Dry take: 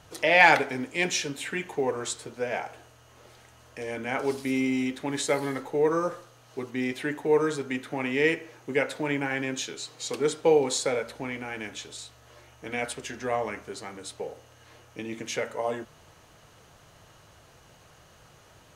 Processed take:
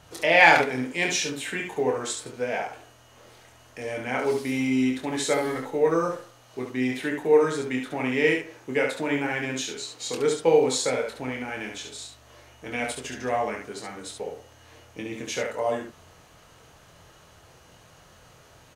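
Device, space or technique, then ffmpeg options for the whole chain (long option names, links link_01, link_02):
slapback doubling: -filter_complex "[0:a]asplit=3[link_01][link_02][link_03];[link_02]adelay=24,volume=-5dB[link_04];[link_03]adelay=70,volume=-5dB[link_05];[link_01][link_04][link_05]amix=inputs=3:normalize=0"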